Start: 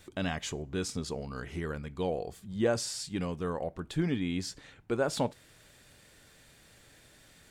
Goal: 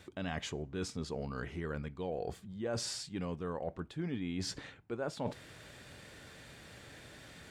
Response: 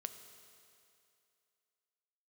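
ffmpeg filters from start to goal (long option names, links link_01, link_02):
-af "highpass=55,highshelf=frequency=6200:gain=-12,areverse,acompressor=threshold=-44dB:ratio=5,areverse,volume=7.5dB"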